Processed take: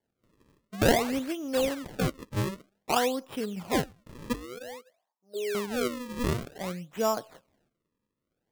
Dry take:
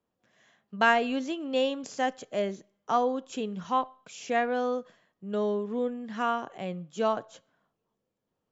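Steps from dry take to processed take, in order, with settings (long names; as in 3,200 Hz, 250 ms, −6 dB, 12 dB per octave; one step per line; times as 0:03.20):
0:04.33–0:05.55: envelope filter 400–1,000 Hz, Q 7.9, down, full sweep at −27.5 dBFS
sample-and-hold swept by an LFO 34×, swing 160% 0.53 Hz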